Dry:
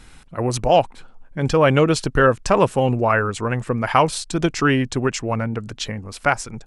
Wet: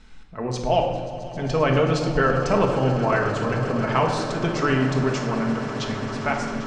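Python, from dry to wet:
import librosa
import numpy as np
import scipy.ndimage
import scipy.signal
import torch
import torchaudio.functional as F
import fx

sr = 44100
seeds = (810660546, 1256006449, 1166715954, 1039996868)

p1 = scipy.signal.sosfilt(scipy.signal.butter(4, 6600.0, 'lowpass', fs=sr, output='sos'), x)
p2 = p1 + fx.echo_swell(p1, sr, ms=133, loudest=8, wet_db=-17.5, dry=0)
p3 = fx.room_shoebox(p2, sr, seeds[0], volume_m3=1100.0, walls='mixed', distance_m=1.5)
y = p3 * 10.0 ** (-7.0 / 20.0)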